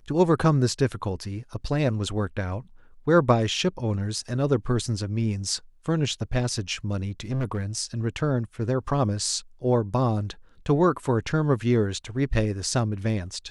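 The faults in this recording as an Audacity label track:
7.200000	7.650000	clipped -23 dBFS

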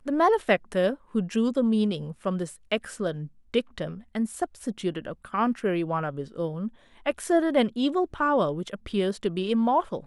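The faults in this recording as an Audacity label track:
8.690000	8.690000	gap 2.6 ms

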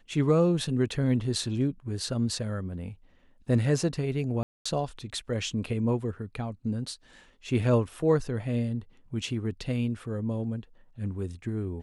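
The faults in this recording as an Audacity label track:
4.430000	4.660000	gap 0.225 s

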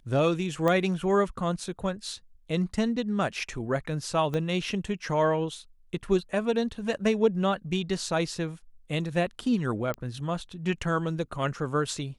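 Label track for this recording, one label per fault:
0.680000	0.680000	pop -14 dBFS
4.340000	4.340000	pop -19 dBFS
9.940000	9.940000	pop -20 dBFS

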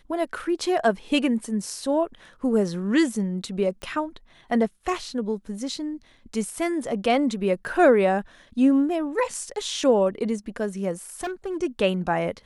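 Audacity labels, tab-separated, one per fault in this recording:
3.820000	3.820000	pop -22 dBFS
11.100000	11.570000	clipped -25.5 dBFS

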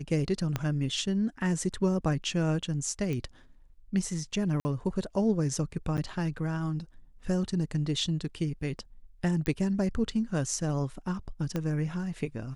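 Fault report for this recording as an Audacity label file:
0.560000	0.560000	pop -15 dBFS
3.130000	3.130000	pop -22 dBFS
4.600000	4.650000	gap 50 ms
5.970000	5.980000	gap 8.9 ms
9.460000	9.460000	pop -18 dBFS
11.560000	11.560000	pop -18 dBFS

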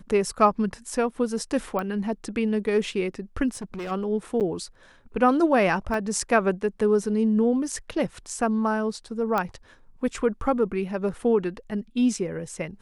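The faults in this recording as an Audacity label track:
1.790000	1.790000	pop -17 dBFS
3.510000	3.920000	clipped -30 dBFS
4.400000	4.410000	gap 8.3 ms
5.940000	5.940000	gap 2.2 ms
9.380000	9.380000	pop -12 dBFS

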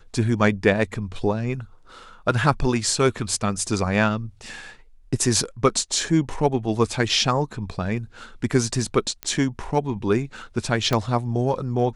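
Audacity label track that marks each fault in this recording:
9.230000	9.230000	pop -12 dBFS
10.930000	10.930000	pop -8 dBFS

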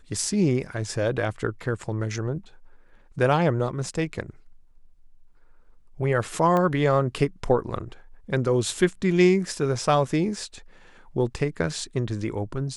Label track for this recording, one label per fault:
6.570000	6.570000	pop -14 dBFS

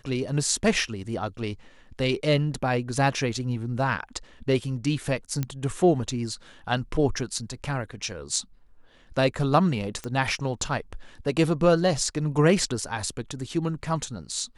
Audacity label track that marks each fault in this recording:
5.430000	5.430000	pop -14 dBFS
10.040000	10.040000	pop -19 dBFS

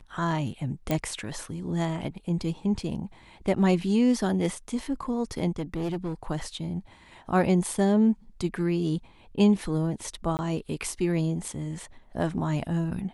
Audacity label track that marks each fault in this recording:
0.910000	0.910000	pop -12 dBFS
5.580000	6.140000	clipped -26 dBFS
10.370000	10.390000	gap 19 ms

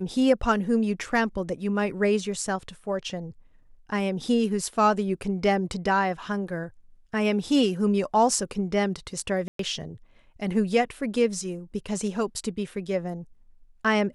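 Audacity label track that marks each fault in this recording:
9.480000	9.590000	gap 0.113 s

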